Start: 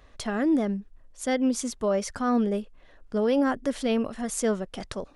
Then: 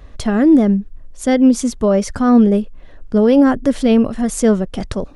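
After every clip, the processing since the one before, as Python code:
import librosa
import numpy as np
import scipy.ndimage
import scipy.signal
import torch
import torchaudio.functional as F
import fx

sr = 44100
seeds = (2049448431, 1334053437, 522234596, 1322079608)

y = fx.low_shelf(x, sr, hz=360.0, db=11.0)
y = y * 10.0 ** (6.5 / 20.0)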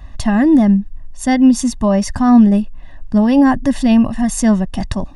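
y = x + 0.84 * np.pad(x, (int(1.1 * sr / 1000.0), 0))[:len(x)]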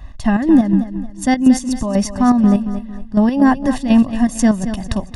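y = fx.chopper(x, sr, hz=4.1, depth_pct=60, duty_pct=50)
y = fx.echo_feedback(y, sr, ms=226, feedback_pct=36, wet_db=-11.0)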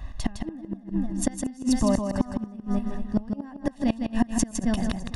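y = fx.gate_flip(x, sr, shuts_db=-8.0, range_db=-29)
y = y + 10.0 ** (-6.0 / 20.0) * np.pad(y, (int(159 * sr / 1000.0), 0))[:len(y)]
y = y * 10.0 ** (-2.0 / 20.0)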